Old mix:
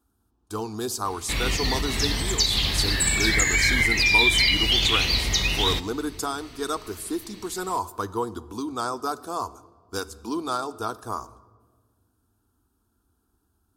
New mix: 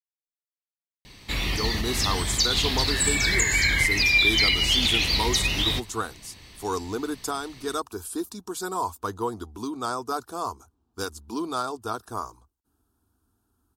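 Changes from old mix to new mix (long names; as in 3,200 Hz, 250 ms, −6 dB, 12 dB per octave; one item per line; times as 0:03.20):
speech: entry +1.05 s
reverb: off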